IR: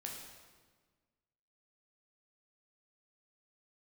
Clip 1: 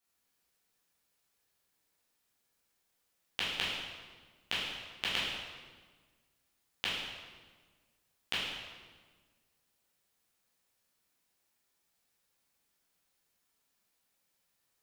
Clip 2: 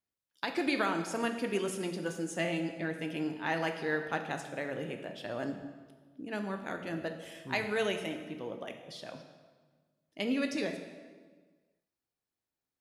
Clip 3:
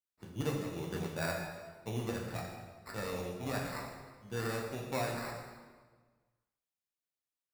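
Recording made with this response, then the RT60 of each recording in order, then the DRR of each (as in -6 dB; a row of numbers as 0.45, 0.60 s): 3; 1.5, 1.5, 1.5 s; -9.0, 5.0, -1.0 dB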